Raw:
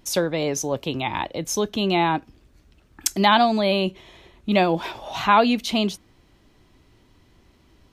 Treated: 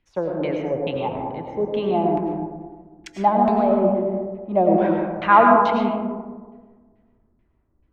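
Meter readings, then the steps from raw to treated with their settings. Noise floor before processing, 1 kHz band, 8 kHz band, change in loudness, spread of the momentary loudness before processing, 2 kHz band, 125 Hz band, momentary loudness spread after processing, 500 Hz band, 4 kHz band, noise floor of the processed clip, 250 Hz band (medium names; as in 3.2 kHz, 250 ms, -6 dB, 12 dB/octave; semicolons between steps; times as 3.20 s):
-58 dBFS, +3.0 dB, under -25 dB, +1.5 dB, 11 LU, -2.5 dB, 0.0 dB, 15 LU, +4.0 dB, -14.5 dB, -65 dBFS, +2.0 dB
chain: LFO low-pass saw down 2.3 Hz 270–2400 Hz; algorithmic reverb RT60 2 s, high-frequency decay 0.25×, pre-delay 65 ms, DRR 0 dB; three bands expanded up and down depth 40%; trim -4.5 dB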